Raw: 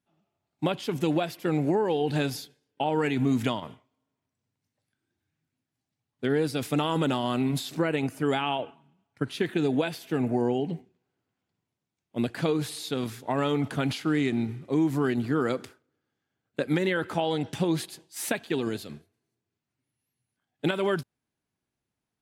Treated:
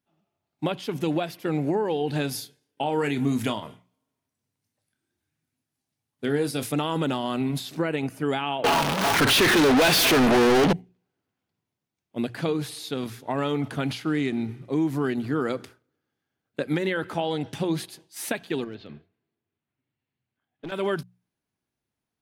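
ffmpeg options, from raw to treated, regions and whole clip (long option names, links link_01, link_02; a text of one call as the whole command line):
ffmpeg -i in.wav -filter_complex "[0:a]asettb=1/sr,asplit=3[link_01][link_02][link_03];[link_01]atrim=end=2.294[link_04];[link_02]atrim=start=2.29:end=6.72,asetpts=PTS-STARTPTS,afade=type=in:duration=0.004:curve=qsin,afade=type=out:start_time=4.426:duration=0.004:curve=qsin,equalizer=frequency=10000:width_type=o:width=1.3:gain=7.5,asplit=2[link_05][link_06];[link_06]adelay=28,volume=-10dB[link_07];[link_05][link_07]amix=inputs=2:normalize=0,atrim=end_sample=195363[link_08];[link_03]atrim=start=6.716[link_09];[link_04][link_08]acrossfade=duration=0.004:curve1=hsin:curve2=qsin[link_10];[link_10][link_09]acrossfade=duration=0.004:curve1=qsin:curve2=hsin,asettb=1/sr,asplit=3[link_11][link_12][link_13];[link_11]atrim=end=8.644[link_14];[link_12]atrim=start=8.64:end=10.73,asetpts=PTS-STARTPTS,afade=type=in:duration=0.004:curve=qsin,afade=type=out:start_time=2.086:duration=0.004:curve=qsin,aeval=exprs='val(0)+0.5*0.00944*sgn(val(0))':channel_layout=same,asplit=2[link_15][link_16];[link_16]highpass=frequency=720:poles=1,volume=41dB,asoftclip=type=tanh:threshold=-12dB[link_17];[link_15][link_17]amix=inputs=2:normalize=0,lowpass=frequency=7600:poles=1,volume=-6dB[link_18];[link_13]atrim=start=10.726[link_19];[link_14][link_18]acrossfade=duration=0.004:curve1=hsin:curve2=qsin[link_20];[link_20][link_19]acrossfade=duration=0.004:curve1=qsin:curve2=hsin,asettb=1/sr,asplit=3[link_21][link_22][link_23];[link_21]atrim=end=18.644[link_24];[link_22]atrim=start=18.64:end=20.72,asetpts=PTS-STARTPTS,afade=type=in:duration=0.004:curve=qsin,afade=type=out:start_time=2.076:duration=0.004:curve=qsin,lowpass=frequency=3600:width=0.5412,lowpass=frequency=3600:width=1.3066,acompressor=threshold=-37dB:ratio=2:attack=3.2:release=140:knee=1:detection=peak,aeval=exprs='clip(val(0),-1,0.0251)':channel_layout=same[link_25];[link_23]atrim=start=20.716[link_26];[link_24][link_25]acrossfade=duration=0.004:curve1=hsin:curve2=qsin[link_27];[link_27][link_26]acrossfade=duration=0.004:curve1=qsin:curve2=hsin,equalizer=frequency=7500:width_type=o:width=0.23:gain=-4,bandreject=frequency=60:width_type=h:width=6,bandreject=frequency=120:width_type=h:width=6,bandreject=frequency=180:width_type=h:width=6" out.wav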